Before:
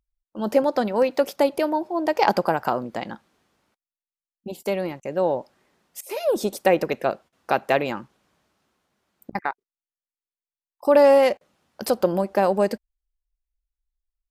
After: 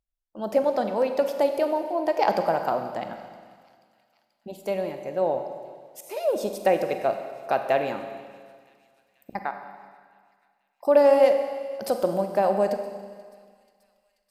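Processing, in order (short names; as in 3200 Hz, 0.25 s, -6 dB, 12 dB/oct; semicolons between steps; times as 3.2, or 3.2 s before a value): bell 660 Hz +7 dB 0.57 oct; thin delay 0.484 s, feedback 65%, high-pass 2600 Hz, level -22.5 dB; Schroeder reverb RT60 1.8 s, combs from 31 ms, DRR 6.5 dB; gain -6.5 dB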